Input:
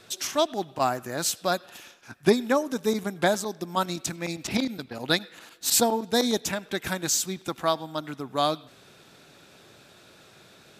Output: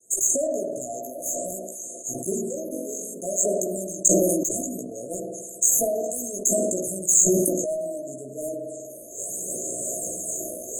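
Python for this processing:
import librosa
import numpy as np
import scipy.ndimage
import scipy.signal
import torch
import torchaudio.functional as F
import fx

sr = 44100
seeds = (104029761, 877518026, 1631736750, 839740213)

y = fx.recorder_agc(x, sr, target_db=-17.0, rise_db_per_s=40.0, max_gain_db=30)
y = fx.weighting(y, sr, curve='ITU-R 468')
y = fx.wow_flutter(y, sr, seeds[0], rate_hz=2.1, depth_cents=100.0)
y = fx.phaser_stages(y, sr, stages=12, low_hz=130.0, high_hz=4900.0, hz=0.64, feedback_pct=20)
y = fx.doubler(y, sr, ms=16.0, db=-2.0)
y = fx.room_flutter(y, sr, wall_m=3.8, rt60_s=0.74, at=(2.71, 3.13), fade=0.02)
y = fx.rev_spring(y, sr, rt60_s=2.3, pass_ms=(52,), chirp_ms=45, drr_db=3.0)
y = fx.cheby_harmonics(y, sr, harmonics=(6, 7), levels_db=(-43, -25), full_scale_db=-1.5)
y = fx.brickwall_bandstop(y, sr, low_hz=700.0, high_hz=6300.0)
y = fx.sustainer(y, sr, db_per_s=24.0)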